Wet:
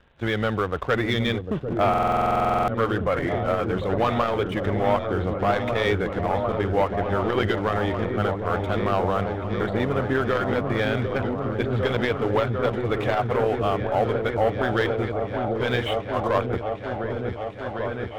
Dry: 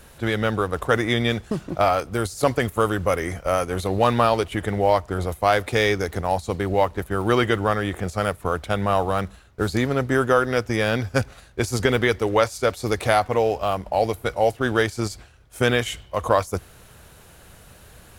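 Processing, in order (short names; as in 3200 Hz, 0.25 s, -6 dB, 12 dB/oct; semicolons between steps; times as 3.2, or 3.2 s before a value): elliptic low-pass 3500 Hz; sample leveller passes 2; on a send: repeats that get brighter 0.749 s, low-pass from 400 Hz, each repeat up 1 oct, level -3 dB; on the sum: stuck buffer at 1.89, samples 2048, times 16; core saturation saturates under 320 Hz; gain -7 dB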